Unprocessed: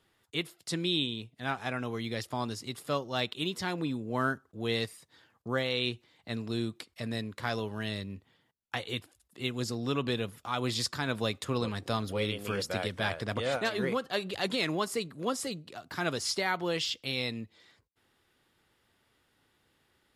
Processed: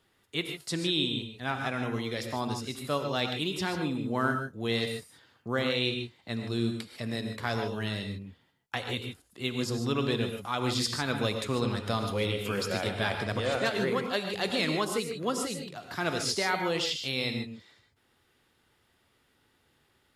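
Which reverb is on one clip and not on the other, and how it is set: gated-style reverb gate 170 ms rising, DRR 5 dB; trim +1 dB

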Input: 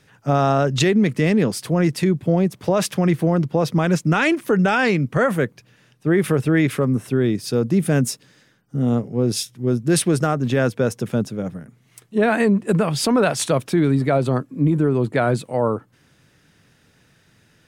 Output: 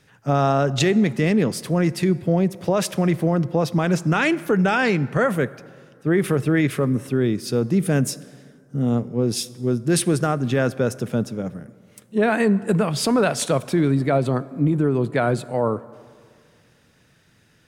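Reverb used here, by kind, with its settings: plate-style reverb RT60 2.2 s, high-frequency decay 0.5×, DRR 17.5 dB; trim -1.5 dB

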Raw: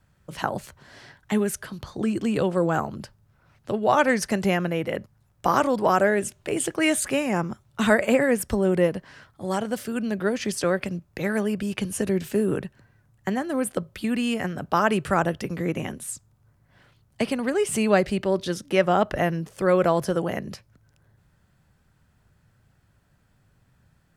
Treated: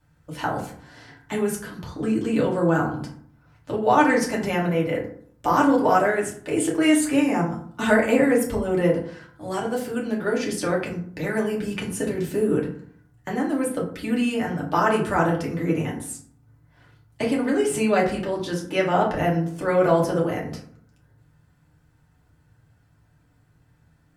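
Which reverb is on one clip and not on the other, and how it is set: FDN reverb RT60 0.57 s, low-frequency decay 1.25×, high-frequency decay 0.5×, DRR -4 dB; trim -4.5 dB

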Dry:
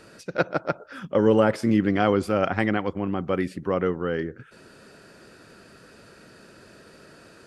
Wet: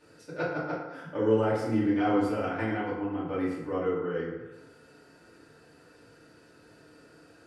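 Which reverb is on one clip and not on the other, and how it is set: FDN reverb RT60 1.1 s, low-frequency decay 0.75×, high-frequency decay 0.55×, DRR -10 dB; trim -17 dB

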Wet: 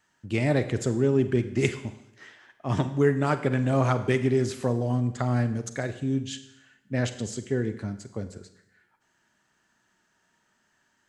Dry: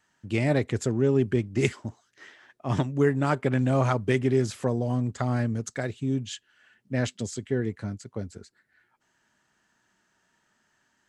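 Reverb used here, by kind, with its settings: Schroeder reverb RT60 0.8 s, combs from 33 ms, DRR 10.5 dB

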